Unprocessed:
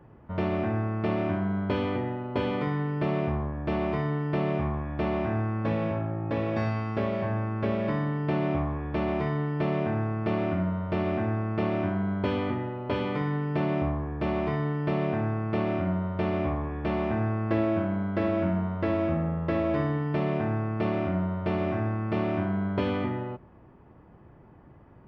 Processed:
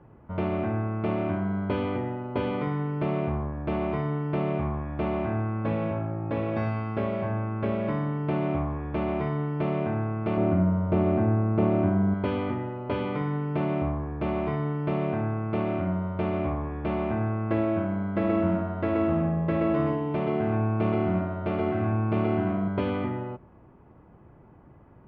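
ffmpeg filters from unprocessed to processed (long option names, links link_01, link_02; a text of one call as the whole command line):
ffmpeg -i in.wav -filter_complex "[0:a]asettb=1/sr,asplit=3[link_01][link_02][link_03];[link_01]atrim=end=10.374[link_04];[link_02]atrim=start=10.37:end=12.14,asetpts=PTS-STARTPTS,afade=type=in:duration=0.004:curve=qsin,afade=type=out:start_time=1.766:duration=0.004:curve=qsin,tiltshelf=frequency=1200:gain=5.5[link_05];[link_03]atrim=start=12.136[link_06];[link_04][link_05]acrossfade=duration=0.004:curve1=hsin:curve2=qsin[link_07];[link_07][link_06]acrossfade=duration=0.004:curve1=qsin:curve2=hsin,asettb=1/sr,asplit=3[link_08][link_09][link_10];[link_08]atrim=end=18.034[link_11];[link_09]atrim=start=18.03:end=22.68,asetpts=PTS-STARTPTS,afade=type=in:duration=0.004:curve=qsin,afade=type=out:start_time=4.646:duration=0.004:curve=qsin,aecho=1:1:127:0.668,atrim=end_sample=205065[link_12];[link_10]atrim=start=22.676[link_13];[link_11][link_12]acrossfade=duration=0.004:curve1=hsin:curve2=qsin[link_14];[link_14][link_13]acrossfade=duration=0.004:curve1=qsin:curve2=hsin,lowpass=3000,bandreject=frequency=1800:width=14" out.wav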